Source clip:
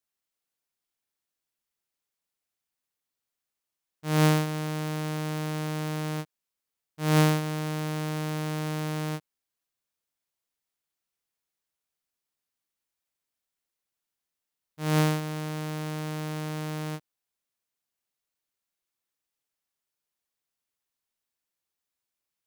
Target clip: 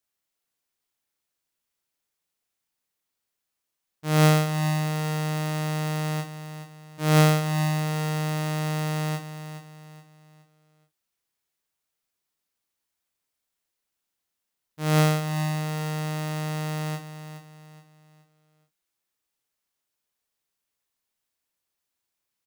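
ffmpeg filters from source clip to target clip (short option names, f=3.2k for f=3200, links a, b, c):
-filter_complex "[0:a]asplit=2[a][b];[b]adelay=34,volume=-8dB[c];[a][c]amix=inputs=2:normalize=0,asplit=2[d][e];[e]aecho=0:1:421|842|1263|1684:0.282|0.104|0.0386|0.0143[f];[d][f]amix=inputs=2:normalize=0,volume=3dB"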